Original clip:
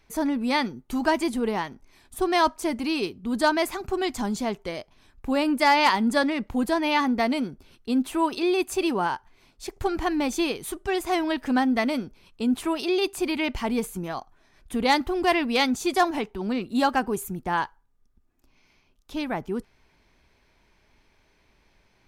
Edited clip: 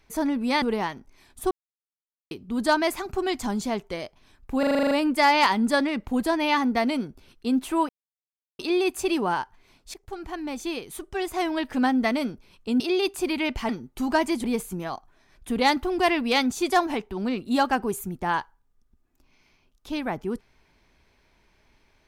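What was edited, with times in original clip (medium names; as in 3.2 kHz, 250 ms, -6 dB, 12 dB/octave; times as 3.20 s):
0.62–1.37 s: move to 13.68 s
2.26–3.06 s: mute
5.34 s: stutter 0.04 s, 9 plays
8.32 s: insert silence 0.70 s
9.67–11.61 s: fade in linear, from -13 dB
12.53–12.79 s: delete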